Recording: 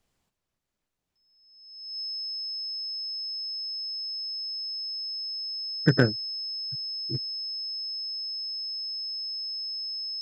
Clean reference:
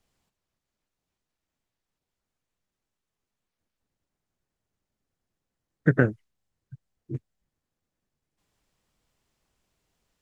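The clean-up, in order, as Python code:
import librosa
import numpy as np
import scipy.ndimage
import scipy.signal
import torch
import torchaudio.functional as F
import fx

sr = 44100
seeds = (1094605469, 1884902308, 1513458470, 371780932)

y = fx.fix_declip(x, sr, threshold_db=-7.5)
y = fx.notch(y, sr, hz=5200.0, q=30.0)
y = fx.fix_level(y, sr, at_s=7.59, step_db=-3.5)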